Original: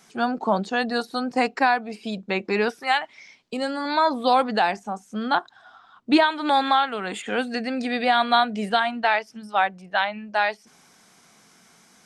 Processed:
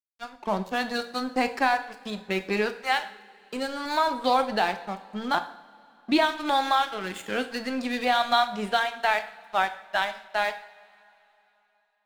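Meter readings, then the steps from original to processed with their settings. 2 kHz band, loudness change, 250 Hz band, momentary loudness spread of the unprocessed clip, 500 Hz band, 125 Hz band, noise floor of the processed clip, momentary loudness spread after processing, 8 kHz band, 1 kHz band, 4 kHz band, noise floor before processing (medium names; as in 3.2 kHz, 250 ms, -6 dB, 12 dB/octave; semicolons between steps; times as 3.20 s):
-3.0 dB, -3.5 dB, -5.0 dB, 10 LU, -3.5 dB, no reading, -68 dBFS, 12 LU, +1.0 dB, -3.5 dB, -2.5 dB, -56 dBFS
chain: fade-in on the opening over 0.67 s; spectral noise reduction 12 dB; in parallel at -3 dB: compression, threshold -29 dBFS, peak gain reduction 15.5 dB; on the sum: crossover distortion -33 dBFS; two-slope reverb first 0.54 s, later 3.3 s, from -20 dB, DRR 8.5 dB; trim -4 dB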